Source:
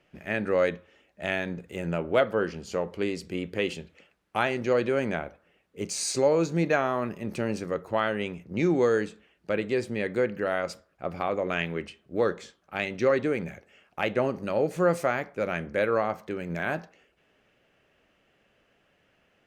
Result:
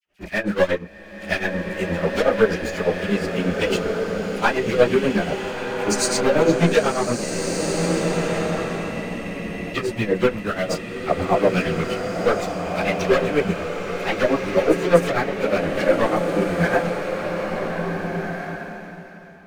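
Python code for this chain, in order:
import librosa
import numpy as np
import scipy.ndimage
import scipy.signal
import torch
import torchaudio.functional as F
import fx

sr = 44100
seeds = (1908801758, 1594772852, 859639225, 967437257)

p1 = fx.level_steps(x, sr, step_db=24)
p2 = x + (p1 * 10.0 ** (1.0 / 20.0))
p3 = fx.leveller(p2, sr, passes=3)
p4 = fx.doubler(p3, sr, ms=34.0, db=-7.5)
p5 = fx.dispersion(p4, sr, late='lows', ms=54.0, hz=1600.0)
p6 = p5 * (1.0 - 0.87 / 2.0 + 0.87 / 2.0 * np.cos(2.0 * np.pi * 8.3 * (np.arange(len(p5)) / sr)))
p7 = fx.chorus_voices(p6, sr, voices=6, hz=0.75, base_ms=13, depth_ms=3.3, mix_pct=70)
p8 = fx.spec_freeze(p7, sr, seeds[0], at_s=7.26, hold_s=2.48)
y = fx.rev_bloom(p8, sr, seeds[1], attack_ms=1690, drr_db=2.5)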